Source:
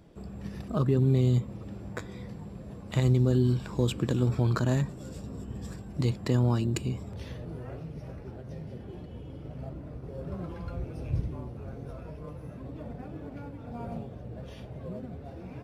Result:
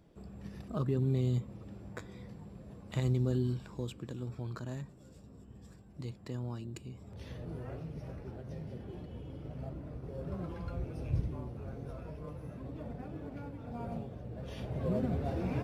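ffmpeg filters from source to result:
-af "volume=15.5dB,afade=t=out:st=3.33:d=0.65:silence=0.421697,afade=t=in:st=6.94:d=0.56:silence=0.251189,afade=t=in:st=14.38:d=0.72:silence=0.298538"

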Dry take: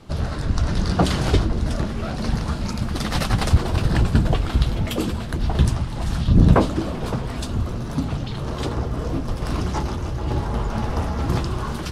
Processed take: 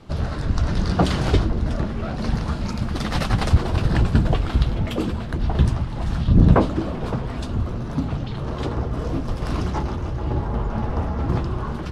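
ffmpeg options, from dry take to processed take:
-af "asetnsamples=n=441:p=0,asendcmd='1.5 lowpass f 2600;2.19 lowpass f 4500;4.63 lowpass f 2700;8.93 lowpass f 5500;9.7 lowpass f 2600;10.28 lowpass f 1500',lowpass=f=4.9k:p=1"

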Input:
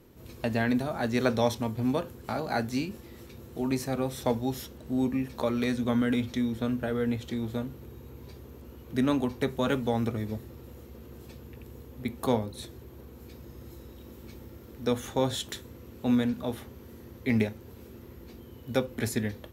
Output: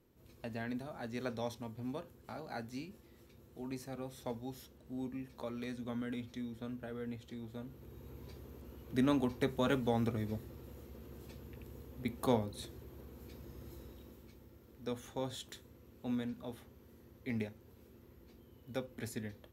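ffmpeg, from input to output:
-af "volume=-5dB,afade=t=in:st=7.56:d=0.55:silence=0.354813,afade=t=out:st=13.82:d=0.5:silence=0.421697"

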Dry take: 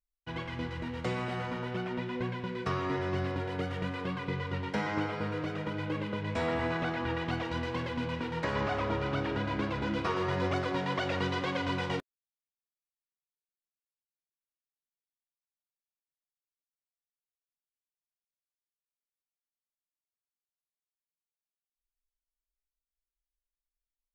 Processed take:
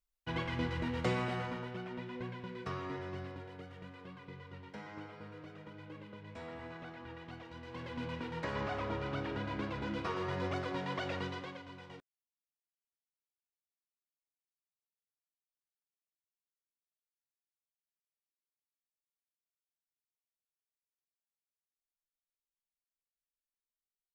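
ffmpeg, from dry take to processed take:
-af "volume=10.5dB,afade=t=out:st=1.02:d=0.72:silence=0.354813,afade=t=out:st=2.76:d=0.87:silence=0.421697,afade=t=in:st=7.62:d=0.42:silence=0.334965,afade=t=out:st=11.11:d=0.53:silence=0.237137"

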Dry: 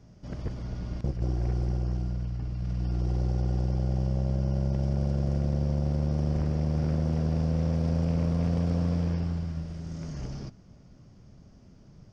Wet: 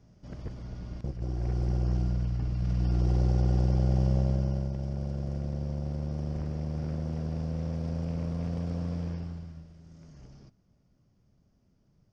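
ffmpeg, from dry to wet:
-af "volume=2.5dB,afade=t=in:st=1.26:d=0.73:silence=0.421697,afade=t=out:st=4.15:d=0.58:silence=0.375837,afade=t=out:st=9.08:d=0.64:silence=0.375837"

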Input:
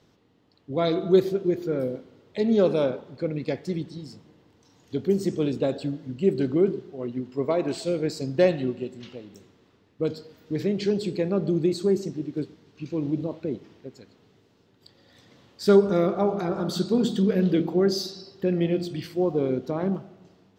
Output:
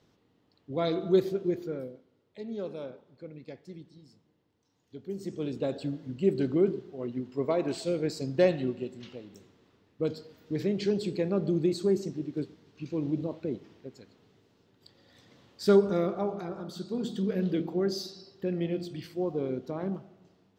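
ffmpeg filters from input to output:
-af "volume=14dB,afade=t=out:st=1.54:d=0.4:silence=0.281838,afade=t=in:st=5.05:d=0.9:silence=0.237137,afade=t=out:st=15.65:d=1.09:silence=0.316228,afade=t=in:st=16.74:d=0.61:silence=0.473151"

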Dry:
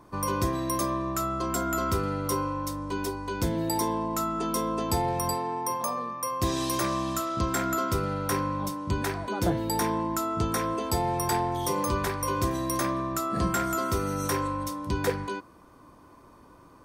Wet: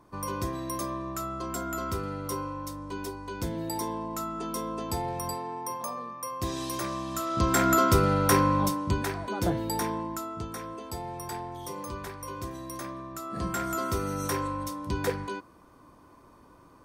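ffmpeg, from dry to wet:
-af "volume=14dB,afade=t=in:st=7.1:d=0.63:silence=0.281838,afade=t=out:st=8.59:d=0.44:silence=0.421697,afade=t=out:st=9.58:d=0.91:silence=0.375837,afade=t=in:st=13.13:d=0.68:silence=0.398107"

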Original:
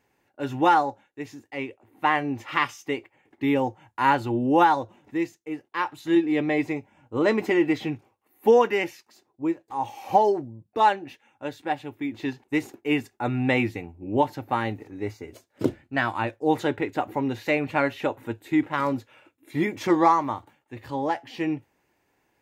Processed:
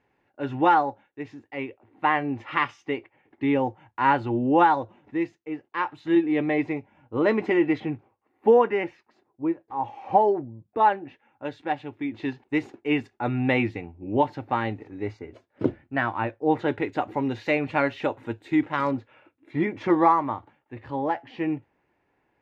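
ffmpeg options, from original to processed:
-af "asetnsamples=n=441:p=0,asendcmd='7.8 lowpass f 1900;11.45 lowpass f 3600;15.19 lowpass f 2300;16.68 lowpass f 4900;18.91 lowpass f 2400',lowpass=2.9k"

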